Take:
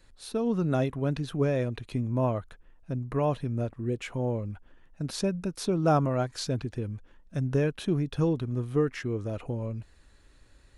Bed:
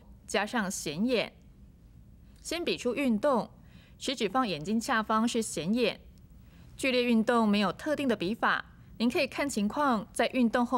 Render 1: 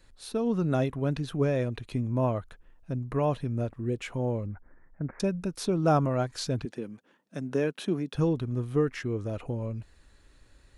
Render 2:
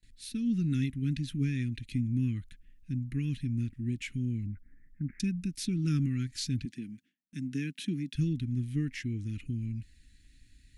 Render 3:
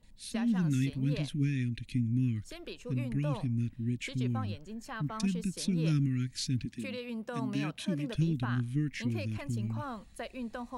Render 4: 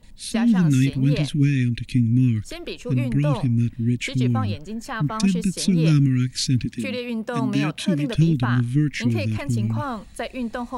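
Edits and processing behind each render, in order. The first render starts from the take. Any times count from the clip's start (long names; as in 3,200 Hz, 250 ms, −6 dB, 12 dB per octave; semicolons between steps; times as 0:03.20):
0:04.46–0:05.20: Butterworth low-pass 2,200 Hz 96 dB per octave; 0:06.65–0:08.15: high-pass filter 180 Hz 24 dB per octave
elliptic band-stop filter 270–2,000 Hz, stop band 70 dB; noise gate with hold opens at −52 dBFS
mix in bed −13.5 dB
level +11.5 dB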